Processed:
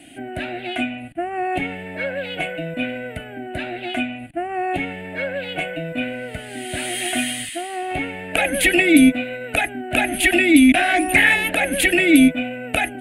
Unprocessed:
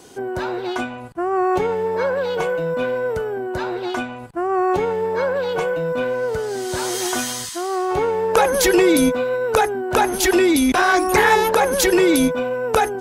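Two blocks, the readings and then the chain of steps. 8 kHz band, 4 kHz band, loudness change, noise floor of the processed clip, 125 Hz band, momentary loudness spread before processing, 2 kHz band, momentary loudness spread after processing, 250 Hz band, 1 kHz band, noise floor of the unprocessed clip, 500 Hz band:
-2.5 dB, +1.5 dB, 0.0 dB, -35 dBFS, -1.0 dB, 10 LU, +4.0 dB, 16 LU, +3.0 dB, -5.5 dB, -33 dBFS, -8.0 dB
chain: FFT filter 200 Hz 0 dB, 300 Hz +10 dB, 430 Hz -19 dB, 670 Hz +7 dB, 1 kHz -23 dB, 1.9 kHz +8 dB, 2.7 kHz +12 dB, 5.7 kHz -18 dB, 9.5 kHz +6 dB, 14 kHz -9 dB; trim -1 dB

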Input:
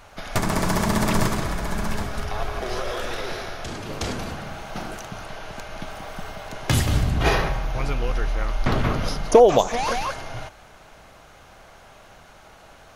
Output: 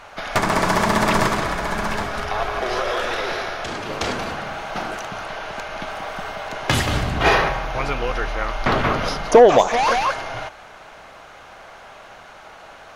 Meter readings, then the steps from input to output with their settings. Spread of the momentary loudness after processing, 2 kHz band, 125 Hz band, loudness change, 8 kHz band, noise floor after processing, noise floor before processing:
13 LU, +7.5 dB, -2.0 dB, +3.0 dB, +0.5 dB, -43 dBFS, -49 dBFS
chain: overdrive pedal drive 13 dB, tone 2.5 kHz, clips at -2.5 dBFS; trim +1.5 dB

